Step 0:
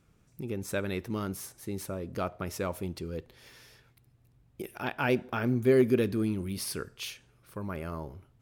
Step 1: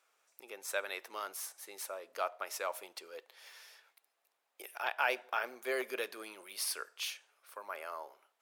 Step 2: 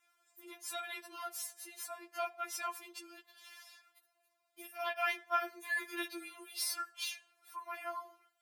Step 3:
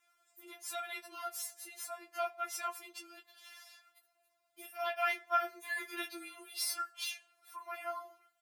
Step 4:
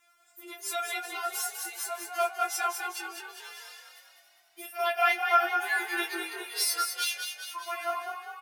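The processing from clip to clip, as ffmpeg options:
-af "highpass=f=610:w=0.5412,highpass=f=610:w=1.3066"
-af "afftfilt=real='re*4*eq(mod(b,16),0)':imag='im*4*eq(mod(b,16),0)':win_size=2048:overlap=0.75,volume=2dB"
-filter_complex "[0:a]asplit=2[a][b];[b]adelay=16,volume=-8.5dB[c];[a][c]amix=inputs=2:normalize=0"
-filter_complex "[0:a]asplit=8[a][b][c][d][e][f][g][h];[b]adelay=201,afreqshift=40,volume=-6.5dB[i];[c]adelay=402,afreqshift=80,volume=-11.5dB[j];[d]adelay=603,afreqshift=120,volume=-16.6dB[k];[e]adelay=804,afreqshift=160,volume=-21.6dB[l];[f]adelay=1005,afreqshift=200,volume=-26.6dB[m];[g]adelay=1206,afreqshift=240,volume=-31.7dB[n];[h]adelay=1407,afreqshift=280,volume=-36.7dB[o];[a][i][j][k][l][m][n][o]amix=inputs=8:normalize=0,volume=8dB"

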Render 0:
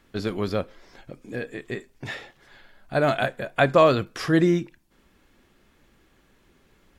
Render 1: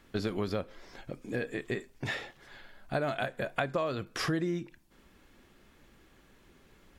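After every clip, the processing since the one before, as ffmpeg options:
-af "acompressor=threshold=-28dB:ratio=10"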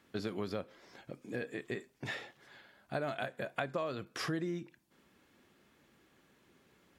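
-af "highpass=110,volume=-5dB"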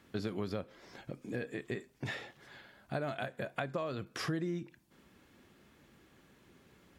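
-filter_complex "[0:a]asplit=2[a][b];[b]acompressor=threshold=-46dB:ratio=6,volume=-0.5dB[c];[a][c]amix=inputs=2:normalize=0,lowshelf=f=160:g=7.5,volume=-3dB"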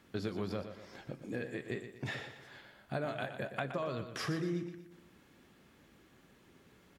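-filter_complex "[0:a]flanger=delay=4.5:depth=7.7:regen=-79:speed=1.1:shape=triangular,asplit=2[a][b];[b]aecho=0:1:120|240|360|480|600:0.316|0.139|0.0612|0.0269|0.0119[c];[a][c]amix=inputs=2:normalize=0,volume=4dB"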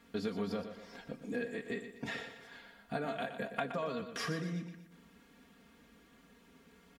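-af "aecho=1:1:4.3:0.83,volume=-1.5dB"

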